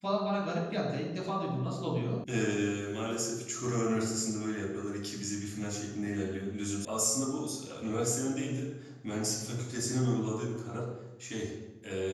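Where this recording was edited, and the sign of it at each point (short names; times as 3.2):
2.24 sound cut off
6.85 sound cut off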